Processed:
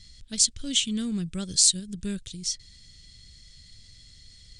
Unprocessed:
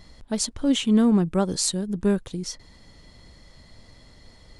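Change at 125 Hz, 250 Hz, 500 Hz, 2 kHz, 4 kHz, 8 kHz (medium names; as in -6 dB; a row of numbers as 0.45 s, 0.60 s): -8.0 dB, -10.5 dB, -16.5 dB, -4.0 dB, +5.0 dB, +6.5 dB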